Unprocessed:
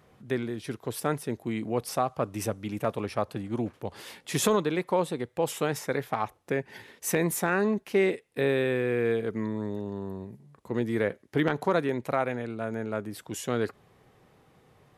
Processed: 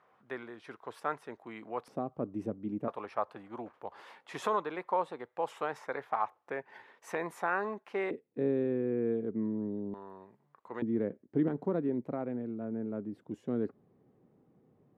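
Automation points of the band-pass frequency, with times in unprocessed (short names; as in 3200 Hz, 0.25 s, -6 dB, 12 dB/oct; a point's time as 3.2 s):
band-pass, Q 1.5
1100 Hz
from 1.88 s 270 Hz
from 2.88 s 1000 Hz
from 8.11 s 260 Hz
from 9.94 s 1100 Hz
from 10.82 s 250 Hz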